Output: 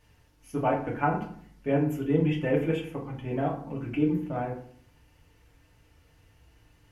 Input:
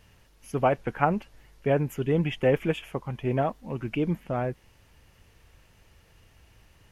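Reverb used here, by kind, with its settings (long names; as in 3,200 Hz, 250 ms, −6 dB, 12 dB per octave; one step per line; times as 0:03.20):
feedback delay network reverb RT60 0.56 s, low-frequency decay 1.35×, high-frequency decay 0.6×, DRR −2.5 dB
level −8 dB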